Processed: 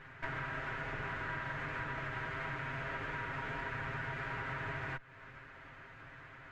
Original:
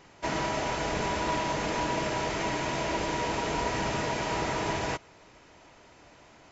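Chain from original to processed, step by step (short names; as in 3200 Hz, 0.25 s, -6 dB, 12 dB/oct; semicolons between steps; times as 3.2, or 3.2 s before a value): minimum comb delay 7.5 ms; EQ curve 130 Hz 0 dB, 190 Hz -8 dB, 840 Hz -10 dB, 1600 Hz +4 dB, 5600 Hz -24 dB; compressor 4:1, threshold -47 dBFS, peak gain reduction 13.5 dB; gain +7.5 dB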